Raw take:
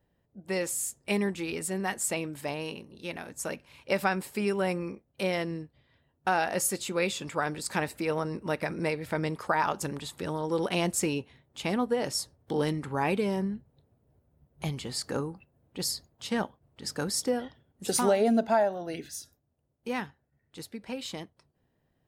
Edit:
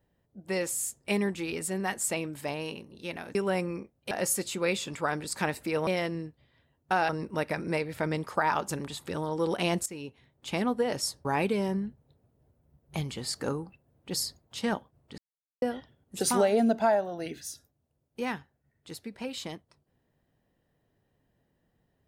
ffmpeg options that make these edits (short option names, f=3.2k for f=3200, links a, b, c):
-filter_complex "[0:a]asplit=9[a][b][c][d][e][f][g][h][i];[a]atrim=end=3.352[j];[b]atrim=start=4.468:end=5.232[k];[c]atrim=start=6.448:end=8.212[l];[d]atrim=start=5.228:end=6.452[m];[e]atrim=start=8.208:end=10.98,asetpts=PTS-STARTPTS,afade=t=out:st=2.768:d=0.004:c=hsin:silence=0.133352[n];[f]atrim=start=10.98:end=12.372,asetpts=PTS-STARTPTS,afade=t=in:d=0.66:silence=0.133352[o];[g]atrim=start=12.928:end=16.86,asetpts=PTS-STARTPTS,afade=t=out:st=3.928:d=0.004:c=hsin[p];[h]atrim=start=16.86:end=17.3,asetpts=PTS-STARTPTS,volume=0[q];[i]atrim=start=17.3,asetpts=PTS-STARTPTS,afade=t=in:d=0.004:c=hsin[r];[j][k]acrossfade=d=0.004:c1=hsin:c2=hsin[s];[s][l]acrossfade=d=0.004:c1=hsin:c2=hsin[t];[t][m]acrossfade=d=0.004:c1=hsin:c2=hsin[u];[n][o]concat=n=2:v=0:a=1[v];[u][v]acrossfade=d=0.004:c1=hsin:c2=hsin[w];[p][q][r]concat=n=3:v=0:a=1[x];[w][x]acrossfade=d=0.004:c1=hsin:c2=hsin"